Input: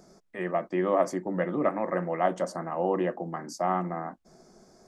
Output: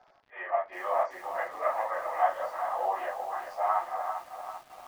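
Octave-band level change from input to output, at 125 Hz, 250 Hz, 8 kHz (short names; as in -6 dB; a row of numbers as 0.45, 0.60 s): under -30 dB, under -25 dB, n/a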